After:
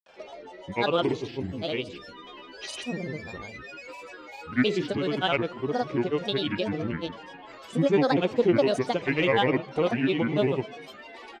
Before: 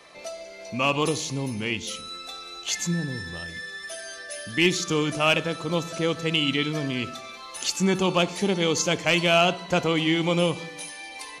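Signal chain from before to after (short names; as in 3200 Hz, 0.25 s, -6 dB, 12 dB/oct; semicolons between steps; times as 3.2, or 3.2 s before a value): LPF 2900 Hz 12 dB/oct; bell 410 Hz +10.5 dB 0.47 oct; grains, pitch spread up and down by 7 st; gain -3 dB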